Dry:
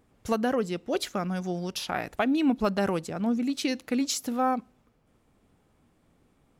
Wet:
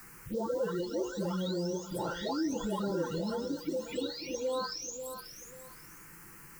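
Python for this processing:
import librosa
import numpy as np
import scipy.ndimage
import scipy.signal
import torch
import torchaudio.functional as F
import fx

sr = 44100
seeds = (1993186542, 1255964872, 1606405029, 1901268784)

p1 = fx.spec_delay(x, sr, highs='late', ms=943)
p2 = fx.peak_eq(p1, sr, hz=240.0, db=12.5, octaves=0.61)
p3 = fx.hum_notches(p2, sr, base_hz=60, count=8)
p4 = p3 + 0.93 * np.pad(p3, (int(2.1 * sr / 1000.0), 0))[:len(p3)]
p5 = fx.over_compress(p4, sr, threshold_db=-32.0, ratio=-1.0)
p6 = p4 + F.gain(torch.from_numpy(p5), -1.0).numpy()
p7 = fx.quant_dither(p6, sr, seeds[0], bits=8, dither='triangular')
p8 = fx.env_phaser(p7, sr, low_hz=530.0, high_hz=2400.0, full_db=-24.5)
p9 = p8 + fx.echo_feedback(p8, sr, ms=538, feedback_pct=17, wet_db=-13.5, dry=0)
p10 = fx.band_squash(p9, sr, depth_pct=40)
y = F.gain(torch.from_numpy(p10), -8.0).numpy()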